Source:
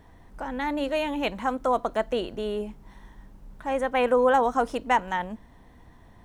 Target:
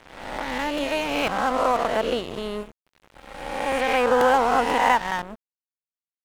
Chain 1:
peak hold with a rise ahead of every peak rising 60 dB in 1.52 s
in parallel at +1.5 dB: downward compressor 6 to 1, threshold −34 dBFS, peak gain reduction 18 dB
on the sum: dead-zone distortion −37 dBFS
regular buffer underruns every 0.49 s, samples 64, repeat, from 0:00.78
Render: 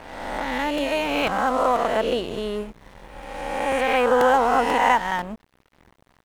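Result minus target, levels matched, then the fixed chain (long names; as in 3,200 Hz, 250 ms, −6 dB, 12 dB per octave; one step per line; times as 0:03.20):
dead-zone distortion: distortion −6 dB
peak hold with a rise ahead of every peak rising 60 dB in 1.52 s
in parallel at +1.5 dB: downward compressor 6 to 1, threshold −34 dBFS, peak gain reduction 18 dB
on the sum: dead-zone distortion −30 dBFS
regular buffer underruns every 0.49 s, samples 64, repeat, from 0:00.78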